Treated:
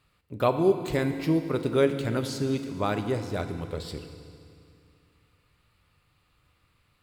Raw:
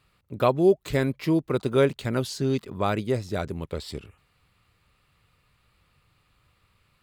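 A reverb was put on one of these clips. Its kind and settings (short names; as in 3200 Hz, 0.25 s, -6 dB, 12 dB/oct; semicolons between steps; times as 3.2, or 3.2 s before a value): FDN reverb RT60 2.4 s, low-frequency decay 1.2×, high-frequency decay 0.95×, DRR 7 dB; gain -2.5 dB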